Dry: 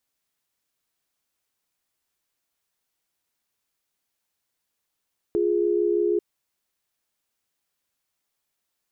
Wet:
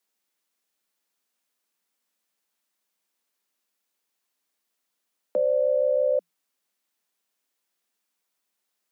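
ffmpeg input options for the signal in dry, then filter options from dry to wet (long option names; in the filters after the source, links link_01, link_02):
-f lavfi -i "aevalsrc='0.0794*(sin(2*PI*349.23*t)+sin(2*PI*415.3*t))':duration=0.84:sample_rate=44100"
-af "afreqshift=170"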